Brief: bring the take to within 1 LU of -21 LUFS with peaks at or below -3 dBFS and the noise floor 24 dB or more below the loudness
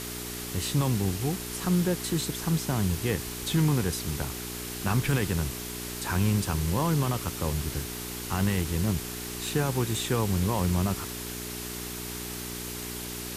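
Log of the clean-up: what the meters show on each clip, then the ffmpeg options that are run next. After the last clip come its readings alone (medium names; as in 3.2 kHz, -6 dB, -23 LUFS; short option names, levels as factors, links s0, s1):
hum 60 Hz; highest harmonic 420 Hz; hum level -37 dBFS; noise floor -37 dBFS; noise floor target -53 dBFS; loudness -29.0 LUFS; peak level -12.5 dBFS; loudness target -21.0 LUFS
-> -af "bandreject=f=60:t=h:w=4,bandreject=f=120:t=h:w=4,bandreject=f=180:t=h:w=4,bandreject=f=240:t=h:w=4,bandreject=f=300:t=h:w=4,bandreject=f=360:t=h:w=4,bandreject=f=420:t=h:w=4"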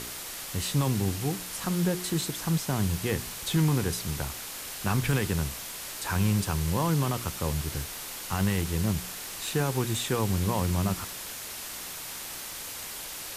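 hum not found; noise floor -39 dBFS; noise floor target -54 dBFS
-> -af "afftdn=nr=15:nf=-39"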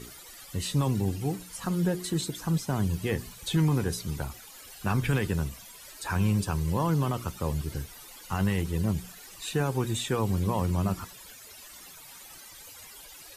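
noise floor -48 dBFS; noise floor target -54 dBFS
-> -af "afftdn=nr=6:nf=-48"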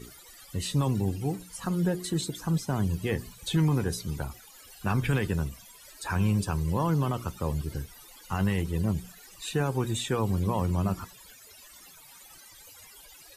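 noise floor -52 dBFS; noise floor target -54 dBFS
-> -af "afftdn=nr=6:nf=-52"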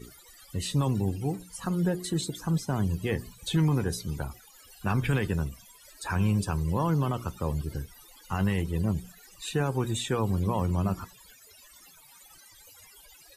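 noise floor -55 dBFS; loudness -29.5 LUFS; peak level -14.5 dBFS; loudness target -21.0 LUFS
-> -af "volume=2.66"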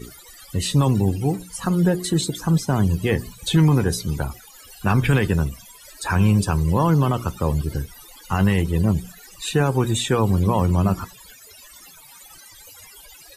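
loudness -21.0 LUFS; peak level -6.0 dBFS; noise floor -46 dBFS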